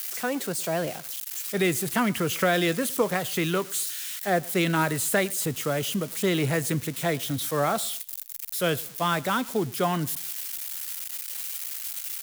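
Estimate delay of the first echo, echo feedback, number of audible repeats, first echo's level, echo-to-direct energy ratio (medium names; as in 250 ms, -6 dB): 111 ms, 37%, 2, -23.5 dB, -23.0 dB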